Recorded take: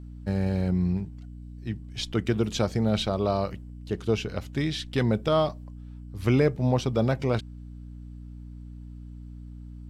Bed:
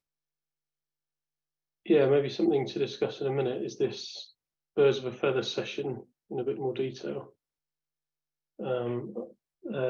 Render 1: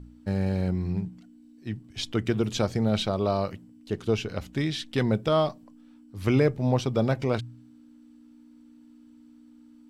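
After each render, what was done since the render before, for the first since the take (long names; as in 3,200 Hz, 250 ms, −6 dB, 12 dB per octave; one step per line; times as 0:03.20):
hum removal 60 Hz, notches 3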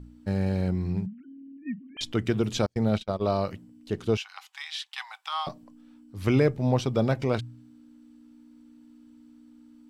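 0:01.06–0:02.01: three sine waves on the formant tracks
0:02.66–0:03.32: noise gate −27 dBFS, range −38 dB
0:04.17–0:05.47: Chebyshev high-pass with heavy ripple 770 Hz, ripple 3 dB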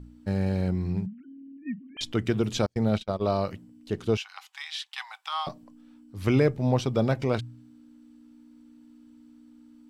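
no processing that can be heard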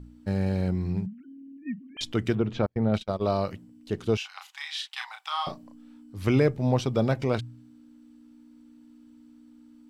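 0:02.35–0:02.94: low-pass filter 2,100 Hz
0:04.18–0:06.17: double-tracking delay 34 ms −4.5 dB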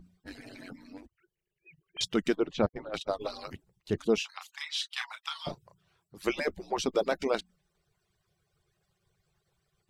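harmonic-percussive split with one part muted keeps percussive
dynamic equaliser 6,700 Hz, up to +4 dB, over −53 dBFS, Q 0.88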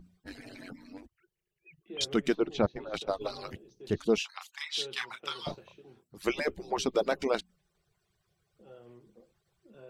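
mix in bed −21.5 dB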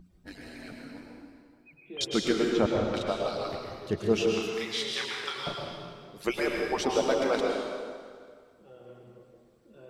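dense smooth reverb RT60 2 s, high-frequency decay 0.8×, pre-delay 95 ms, DRR −1 dB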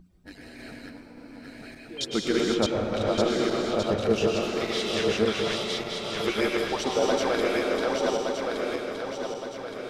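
feedback delay that plays each chunk backwards 584 ms, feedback 67%, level −0.5 dB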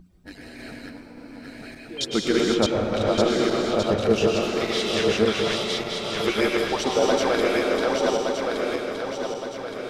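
level +3.5 dB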